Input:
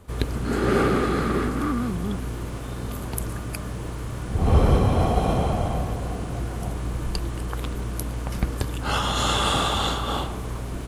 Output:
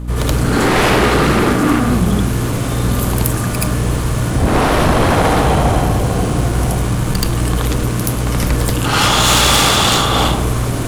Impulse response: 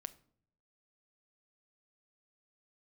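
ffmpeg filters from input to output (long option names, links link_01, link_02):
-filter_complex "[0:a]aeval=exprs='0.531*sin(PI/2*5.62*val(0)/0.531)':channel_layout=same,asplit=2[link_01][link_02];[1:a]atrim=start_sample=2205,highshelf=frequency=3800:gain=6.5,adelay=77[link_03];[link_02][link_03]afir=irnorm=-1:irlink=0,volume=6dB[link_04];[link_01][link_04]amix=inputs=2:normalize=0,aeval=exprs='val(0)+0.178*(sin(2*PI*60*n/s)+sin(2*PI*2*60*n/s)/2+sin(2*PI*3*60*n/s)/3+sin(2*PI*4*60*n/s)/4+sin(2*PI*5*60*n/s)/5)':channel_layout=same,volume=-8dB"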